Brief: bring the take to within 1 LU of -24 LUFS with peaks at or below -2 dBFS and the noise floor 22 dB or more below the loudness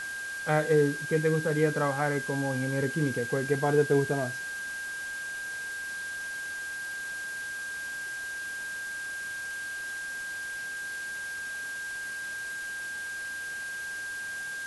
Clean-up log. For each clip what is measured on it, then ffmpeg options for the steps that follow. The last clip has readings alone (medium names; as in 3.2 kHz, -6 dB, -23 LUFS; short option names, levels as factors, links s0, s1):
steady tone 1.6 kHz; tone level -34 dBFS; noise floor -37 dBFS; noise floor target -53 dBFS; loudness -31.0 LUFS; peak level -12.0 dBFS; loudness target -24.0 LUFS
-> -af "bandreject=f=1600:w=30"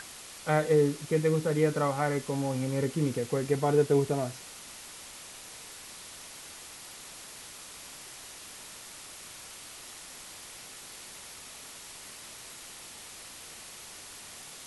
steady tone not found; noise floor -47 dBFS; noise floor target -50 dBFS
-> -af "afftdn=nr=6:nf=-47"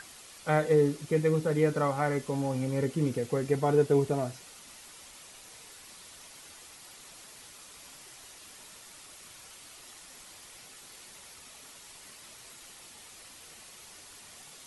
noise floor -51 dBFS; loudness -28.0 LUFS; peak level -12.5 dBFS; loudness target -24.0 LUFS
-> -af "volume=1.58"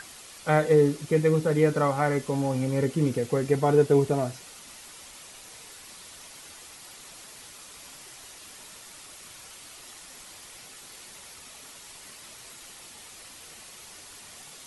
loudness -24.0 LUFS; peak level -8.5 dBFS; noise floor -47 dBFS